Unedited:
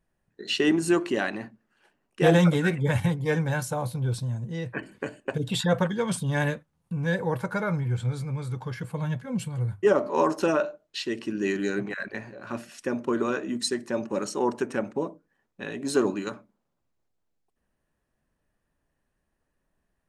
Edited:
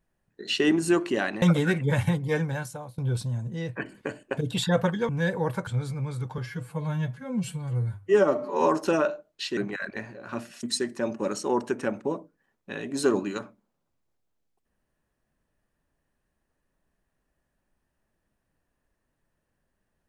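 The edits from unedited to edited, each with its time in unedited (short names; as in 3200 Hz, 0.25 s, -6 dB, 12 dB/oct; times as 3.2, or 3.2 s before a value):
1.42–2.39 cut
3.24–3.95 fade out, to -19.5 dB
6.06–6.95 cut
7.53–7.98 cut
8.69–10.21 stretch 1.5×
11.12–11.75 cut
12.81–13.54 cut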